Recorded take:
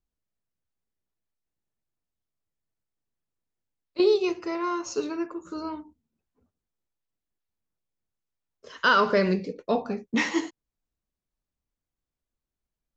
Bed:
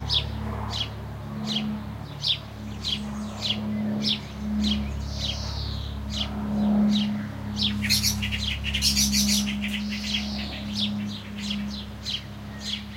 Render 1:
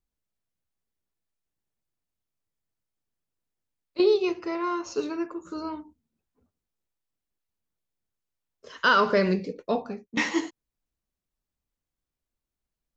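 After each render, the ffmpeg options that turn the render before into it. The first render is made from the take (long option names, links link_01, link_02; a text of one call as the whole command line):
ffmpeg -i in.wav -filter_complex "[0:a]asettb=1/sr,asplit=3[link_01][link_02][link_03];[link_01]atrim=end=4.024[link_04];[link_02]atrim=start=4.02:end=4.99,asetpts=PTS-STARTPTS,afade=type=in:duration=0.004:curve=qsin,afade=type=out:start_time=0.966:duration=0.004:curve=qsin,lowpass=5400[link_05];[link_03]atrim=start=4.986[link_06];[link_04][link_05]acrossfade=duration=0.004:curve1=hsin:curve2=qsin[link_07];[link_07][link_06]acrossfade=duration=0.004:curve1=qsin:curve2=hsin,asplit=2[link_08][link_09];[link_08]atrim=end=10.17,asetpts=PTS-STARTPTS,afade=type=out:start_time=9.63:duration=0.54:silence=0.223872[link_10];[link_09]atrim=start=10.17,asetpts=PTS-STARTPTS,afade=type=in:duration=0.004:curve=hsin:silence=0.223872[link_11];[link_10][link_11]concat=n=2:v=0:a=1" out.wav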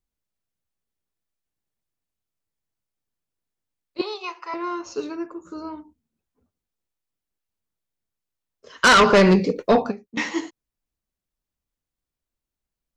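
ffmpeg -i in.wav -filter_complex "[0:a]asettb=1/sr,asplit=3[link_01][link_02][link_03];[link_01]atrim=end=4.014[link_04];[link_02]atrim=start=4.01:end=4.54,asetpts=PTS-STARTPTS,afade=type=in:duration=0.004:curve=qsin,afade=type=out:start_time=0.526:duration=0.004:curve=qsin,highpass=frequency=1000:width_type=q:width=3.3[link_05];[link_03]atrim=start=4.536[link_06];[link_04][link_05]acrossfade=duration=0.004:curve1=hsin:curve2=qsin[link_07];[link_07][link_06]acrossfade=duration=0.004:curve1=qsin:curve2=hsin,asettb=1/sr,asplit=3[link_08][link_09][link_10];[link_08]atrim=end=5.154[link_11];[link_09]atrim=start=5.15:end=5.78,asetpts=PTS-STARTPTS,afade=type=in:duration=0.004:curve=qsin,afade=type=out:start_time=0.626:duration=0.004:curve=qsin,equalizer=frequency=3200:width=0.98:gain=-5.5[link_12];[link_10]atrim=start=5.776[link_13];[link_11][link_12]acrossfade=duration=0.004:curve1=hsin:curve2=qsin[link_14];[link_14][link_13]acrossfade=duration=0.004:curve1=qsin:curve2=hsin,asplit=3[link_15][link_16][link_17];[link_15]afade=type=out:start_time=8.82:duration=0.02[link_18];[link_16]aeval=exprs='0.335*sin(PI/2*2.51*val(0)/0.335)':channel_layout=same,afade=type=in:start_time=8.82:duration=0.02,afade=type=out:start_time=9.9:duration=0.02[link_19];[link_17]afade=type=in:start_time=9.9:duration=0.02[link_20];[link_18][link_19][link_20]amix=inputs=3:normalize=0" out.wav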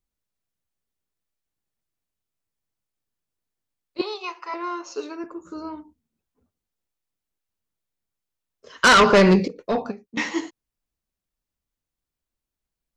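ffmpeg -i in.wav -filter_complex "[0:a]asettb=1/sr,asplit=3[link_01][link_02][link_03];[link_01]atrim=end=4.494[link_04];[link_02]atrim=start=4.49:end=5.24,asetpts=PTS-STARTPTS,afade=type=in:duration=0.004:curve=qsin,afade=type=out:start_time=0.746:duration=0.004:curve=qsin,highpass=360[link_05];[link_03]atrim=start=5.236[link_06];[link_04][link_05]acrossfade=duration=0.004:curve1=hsin:curve2=qsin[link_07];[link_07][link_06]acrossfade=duration=0.004:curve1=qsin:curve2=hsin,asplit=2[link_08][link_09];[link_08]atrim=end=9.48,asetpts=PTS-STARTPTS,afade=type=out:start_time=9.476:duration=0.004:curve=hsin:silence=0.158489[link_10];[link_09]atrim=start=9.48,asetpts=PTS-STARTPTS,afade=type=in:duration=0.72:silence=0.158489[link_11];[link_10][link_11]concat=n=2:v=0:a=1" out.wav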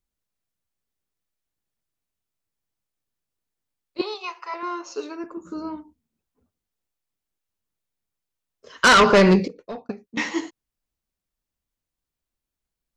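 ffmpeg -i in.wav -filter_complex "[0:a]asettb=1/sr,asplit=3[link_01][link_02][link_03];[link_01]atrim=end=4.144[link_04];[link_02]atrim=start=4.14:end=4.63,asetpts=PTS-STARTPTS,afade=type=in:duration=0.004:curve=qsin,afade=type=out:start_time=0.486:duration=0.004:curve=qsin,equalizer=frequency=280:width_type=o:width=0.5:gain=-15[link_05];[link_03]atrim=start=4.626[link_06];[link_04][link_05]acrossfade=duration=0.004:curve1=hsin:curve2=qsin[link_07];[link_07][link_06]acrossfade=duration=0.004:curve1=qsin:curve2=hsin,asettb=1/sr,asplit=3[link_08][link_09][link_10];[link_08]atrim=end=5.374[link_11];[link_09]atrim=start=5.37:end=5.77,asetpts=PTS-STARTPTS,afade=type=in:duration=0.004:curve=qsin,afade=type=out:start_time=0.396:duration=0.004:curve=qsin,equalizer=frequency=210:width_type=o:width=0.77:gain=9.5[link_12];[link_10]atrim=start=5.766[link_13];[link_11][link_12]acrossfade=duration=0.004:curve1=hsin:curve2=qsin[link_14];[link_14][link_13]acrossfade=duration=0.004:curve1=qsin:curve2=hsin,asplit=2[link_15][link_16];[link_15]atrim=end=9.89,asetpts=PTS-STARTPTS,afade=type=out:start_time=9.35:duration=0.54[link_17];[link_16]atrim=start=9.89,asetpts=PTS-STARTPTS,afade=type=in:duration=0.004:curve=hsin[link_18];[link_17][link_18]concat=n=2:v=0:a=1" out.wav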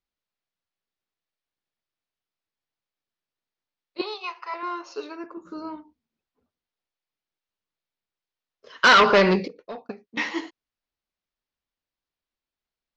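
ffmpeg -i in.wav -af "lowpass=frequency=5100:width=0.5412,lowpass=frequency=5100:width=1.3066,lowshelf=frequency=250:gain=-11" out.wav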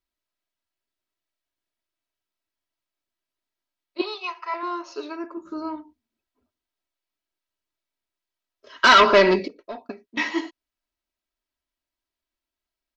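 ffmpeg -i in.wav -af "aecho=1:1:3.1:0.65" out.wav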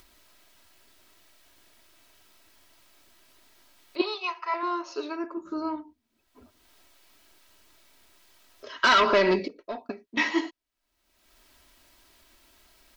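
ffmpeg -i in.wav -af "alimiter=limit=-11dB:level=0:latency=1:release=273,acompressor=mode=upward:threshold=-36dB:ratio=2.5" out.wav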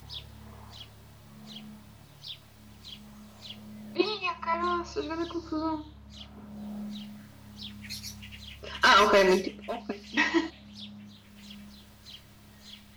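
ffmpeg -i in.wav -i bed.wav -filter_complex "[1:a]volume=-17.5dB[link_01];[0:a][link_01]amix=inputs=2:normalize=0" out.wav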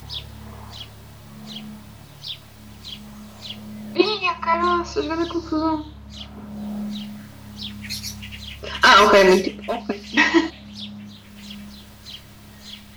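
ffmpeg -i in.wav -af "volume=9.5dB,alimiter=limit=-3dB:level=0:latency=1" out.wav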